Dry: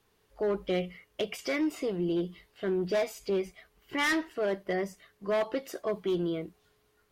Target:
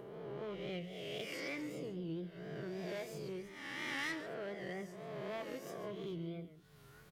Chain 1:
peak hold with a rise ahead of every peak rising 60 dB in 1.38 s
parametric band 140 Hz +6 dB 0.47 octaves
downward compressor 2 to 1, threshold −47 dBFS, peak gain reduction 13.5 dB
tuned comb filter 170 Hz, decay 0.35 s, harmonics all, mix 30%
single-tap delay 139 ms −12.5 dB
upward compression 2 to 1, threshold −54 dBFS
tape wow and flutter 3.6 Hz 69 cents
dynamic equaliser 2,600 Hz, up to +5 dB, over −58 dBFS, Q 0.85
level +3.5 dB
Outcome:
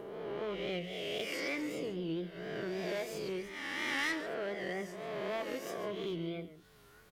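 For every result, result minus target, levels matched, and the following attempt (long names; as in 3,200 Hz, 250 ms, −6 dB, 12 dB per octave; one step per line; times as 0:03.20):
downward compressor: peak gain reduction −5.5 dB; 125 Hz band −4.5 dB
peak hold with a rise ahead of every peak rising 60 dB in 1.38 s
parametric band 140 Hz +6 dB 0.47 octaves
downward compressor 2 to 1, threshold −58 dBFS, peak gain reduction 19 dB
tuned comb filter 170 Hz, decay 0.35 s, harmonics all, mix 30%
single-tap delay 139 ms −12.5 dB
upward compression 2 to 1, threshold −54 dBFS
tape wow and flutter 3.6 Hz 69 cents
dynamic equaliser 2,600 Hz, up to +5 dB, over −58 dBFS, Q 0.85
level +3.5 dB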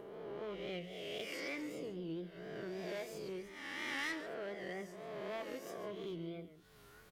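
125 Hz band −4.5 dB
peak hold with a rise ahead of every peak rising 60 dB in 1.38 s
parametric band 140 Hz +18 dB 0.47 octaves
downward compressor 2 to 1, threshold −58 dBFS, peak gain reduction 19.5 dB
tuned comb filter 170 Hz, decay 0.35 s, harmonics all, mix 30%
single-tap delay 139 ms −12.5 dB
upward compression 2 to 1, threshold −54 dBFS
tape wow and flutter 3.6 Hz 69 cents
dynamic equaliser 2,600 Hz, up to +5 dB, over −58 dBFS, Q 0.85
level +3.5 dB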